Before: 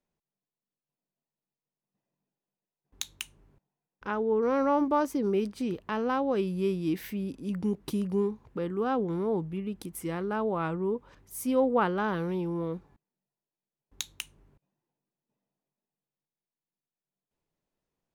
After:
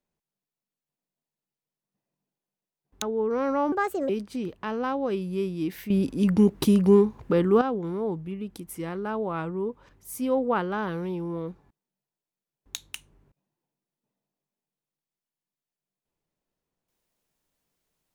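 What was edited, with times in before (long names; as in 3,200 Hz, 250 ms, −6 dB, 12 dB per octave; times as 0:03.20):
0:03.02–0:04.14: remove
0:04.84–0:05.35: play speed 137%
0:07.16–0:08.87: clip gain +10.5 dB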